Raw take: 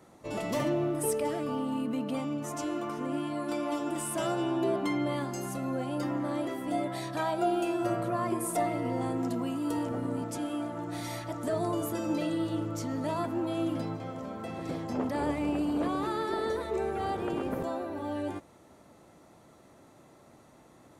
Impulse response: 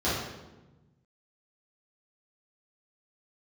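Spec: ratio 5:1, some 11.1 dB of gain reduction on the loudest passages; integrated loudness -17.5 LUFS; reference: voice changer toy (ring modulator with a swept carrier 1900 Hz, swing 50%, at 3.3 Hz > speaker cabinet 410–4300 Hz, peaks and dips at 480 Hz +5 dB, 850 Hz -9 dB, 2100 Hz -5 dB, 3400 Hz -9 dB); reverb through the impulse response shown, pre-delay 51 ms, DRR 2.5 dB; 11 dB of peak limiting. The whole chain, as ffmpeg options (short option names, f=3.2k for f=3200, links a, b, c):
-filter_complex "[0:a]acompressor=threshold=-38dB:ratio=5,alimiter=level_in=15dB:limit=-24dB:level=0:latency=1,volume=-15dB,asplit=2[a][b];[1:a]atrim=start_sample=2205,adelay=51[c];[b][c]afir=irnorm=-1:irlink=0,volume=-15dB[d];[a][d]amix=inputs=2:normalize=0,aeval=exprs='val(0)*sin(2*PI*1900*n/s+1900*0.5/3.3*sin(2*PI*3.3*n/s))':c=same,highpass=410,equalizer=f=480:t=q:w=4:g=5,equalizer=f=850:t=q:w=4:g=-9,equalizer=f=2.1k:t=q:w=4:g=-5,equalizer=f=3.4k:t=q:w=4:g=-9,lowpass=f=4.3k:w=0.5412,lowpass=f=4.3k:w=1.3066,volume=29.5dB"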